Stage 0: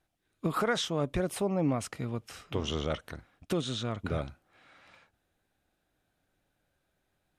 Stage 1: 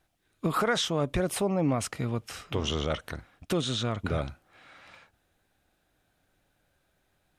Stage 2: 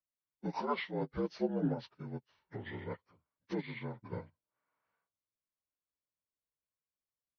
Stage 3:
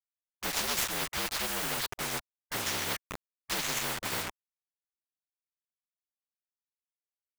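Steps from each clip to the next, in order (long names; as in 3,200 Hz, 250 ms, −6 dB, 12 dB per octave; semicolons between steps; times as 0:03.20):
parametric band 270 Hz −2 dB 2.2 octaves; in parallel at 0 dB: brickwall limiter −27.5 dBFS, peak gain reduction 8.5 dB
partials spread apart or drawn together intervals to 80%; expander for the loud parts 2.5 to 1, over −43 dBFS; level −3 dB
running median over 15 samples; bit reduction 10 bits; every bin compressed towards the loudest bin 10 to 1; level +6.5 dB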